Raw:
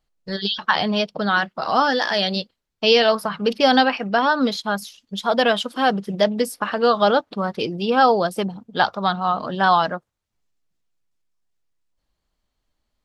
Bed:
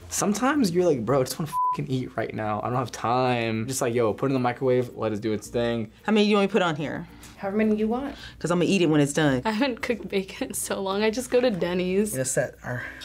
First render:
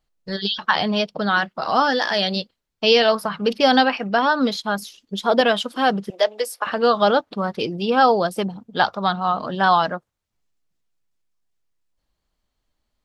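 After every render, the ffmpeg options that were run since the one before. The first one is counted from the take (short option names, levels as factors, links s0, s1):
-filter_complex "[0:a]asettb=1/sr,asplit=3[s0][s1][s2];[s0]atrim=end=4.784[s3];[s1]atrim=start=4.78:end=5.41,asetpts=PTS-STARTPTS,afade=t=in:d=0.004:c=qsin,afade=t=out:st=0.626:d=0.004:c=qsin,equalizer=f=360:t=o:w=0.77:g=9[s4];[s2]atrim=start=5.406[s5];[s3][s4]acrossfade=d=0.004:c1=hsin:c2=qsin[s6];[s6][s5]acrossfade=d=0.004:c1=qsin:c2=hsin,asettb=1/sr,asplit=3[s7][s8][s9];[s7]atrim=end=6.104[s10];[s8]atrim=start=6.1:end=6.67,asetpts=PTS-STARTPTS,afade=t=in:d=0.004:c=qsin,afade=t=out:st=0.566:d=0.004:c=qsin,highpass=f=450:w=0.5412,highpass=f=450:w=1.3066[s11];[s9]atrim=start=6.666[s12];[s10][s11]acrossfade=d=0.004:c1=hsin:c2=qsin[s13];[s13][s12]acrossfade=d=0.004:c1=qsin:c2=hsin"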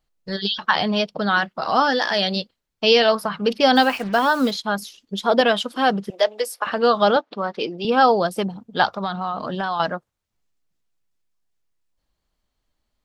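-filter_complex "[0:a]asplit=3[s0][s1][s2];[s0]afade=t=out:st=3.75:d=0.02[s3];[s1]acrusher=bits=5:mix=0:aa=0.5,afade=t=in:st=3.75:d=0.02,afade=t=out:st=4.5:d=0.02[s4];[s2]afade=t=in:st=4.5:d=0.02[s5];[s3][s4][s5]amix=inputs=3:normalize=0,asettb=1/sr,asplit=3[s6][s7][s8];[s6]atrim=end=7.164[s9];[s7]atrim=start=7.16:end=7.85,asetpts=PTS-STARTPTS,afade=t=in:d=0.004:c=qsin,afade=t=out:st=0.686:d=0.004:c=qsin,highpass=270,lowpass=5300[s10];[s8]atrim=start=7.846[s11];[s9][s10]acrossfade=d=0.004:c1=hsin:c2=qsin[s12];[s12][s11]acrossfade=d=0.004:c1=qsin:c2=hsin,asettb=1/sr,asplit=3[s13][s14][s15];[s13]atrim=end=8.874[s16];[s14]atrim=start=8.87:end=9.8,asetpts=PTS-STARTPTS,afade=t=in:d=0.004:c=qsin,afade=t=out:st=0.926:d=0.004:c=qsin,acompressor=threshold=0.0891:ratio=5:attack=3.2:release=140:knee=1:detection=peak[s17];[s15]atrim=start=9.796[s18];[s16][s17]acrossfade=d=0.004:c1=hsin:c2=qsin[s19];[s19][s18]acrossfade=d=0.004:c1=qsin:c2=hsin"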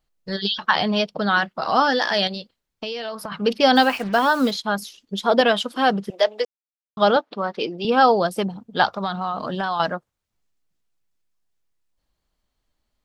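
-filter_complex "[0:a]asettb=1/sr,asplit=3[s0][s1][s2];[s0]atrim=end=2.274[s3];[s1]atrim=start=2.27:end=3.32,asetpts=PTS-STARTPTS,afade=t=in:d=0.004:c=qsin,afade=t=out:st=1.046:d=0.004:c=qsin,acompressor=threshold=0.0447:ratio=6:attack=3.2:release=140:knee=1:detection=peak[s4];[s2]atrim=start=3.316[s5];[s3][s4]acrossfade=d=0.004:c1=hsin:c2=qsin[s6];[s6][s5]acrossfade=d=0.004:c1=qsin:c2=hsin,asettb=1/sr,asplit=3[s7][s8][s9];[s7]atrim=end=8.964[s10];[s8]atrim=start=8.96:end=9.94,asetpts=PTS-STARTPTS,afade=t=in:d=0.004:c=qsin,afade=t=out:st=0.976:d=0.004:c=qsin,highshelf=f=9100:g=7.5[s11];[s9]atrim=start=9.936[s12];[s10][s11]acrossfade=d=0.004:c1=hsin:c2=qsin[s13];[s13][s12]acrossfade=d=0.004:c1=qsin:c2=hsin,asplit=3[s14][s15][s16];[s14]atrim=end=6.45,asetpts=PTS-STARTPTS,afade=t=out:st=6.446:d=0.004:c=hsin[s17];[s15]atrim=start=6.45:end=6.97,asetpts=PTS-STARTPTS,volume=0[s18];[s16]atrim=start=6.97,asetpts=PTS-STARTPTS,afade=t=in:d=0.004:c=hsin[s19];[s17][s18][s19]concat=n=3:v=0:a=1"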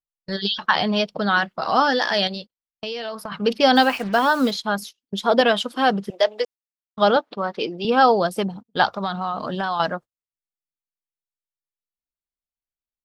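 -af "agate=range=0.0447:threshold=0.0178:ratio=16:detection=peak"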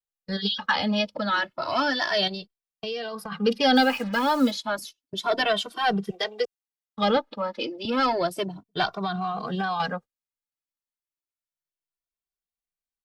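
-filter_complex "[0:a]acrossover=split=380|1300|3100[s0][s1][s2][s3];[s1]asoftclip=type=tanh:threshold=0.106[s4];[s0][s4][s2][s3]amix=inputs=4:normalize=0,asplit=2[s5][s6];[s6]adelay=2.1,afreqshift=0.31[s7];[s5][s7]amix=inputs=2:normalize=1"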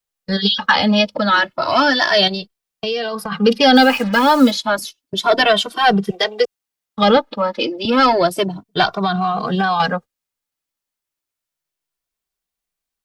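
-af "volume=3.16,alimiter=limit=0.794:level=0:latency=1"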